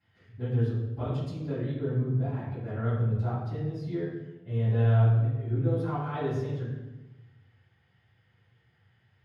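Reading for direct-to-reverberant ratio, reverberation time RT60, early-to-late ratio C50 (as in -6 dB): -15.0 dB, 1.1 s, 1.0 dB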